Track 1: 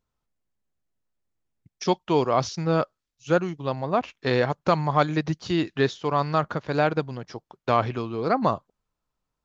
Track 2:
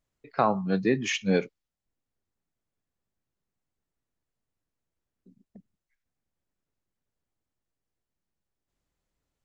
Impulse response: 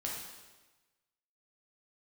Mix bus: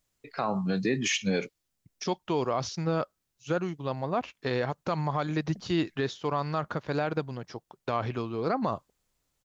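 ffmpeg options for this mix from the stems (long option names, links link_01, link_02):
-filter_complex "[0:a]adelay=200,volume=-3dB[link_01];[1:a]highshelf=frequency=2800:gain=10,volume=1.5dB[link_02];[link_01][link_02]amix=inputs=2:normalize=0,alimiter=limit=-17.5dB:level=0:latency=1:release=52"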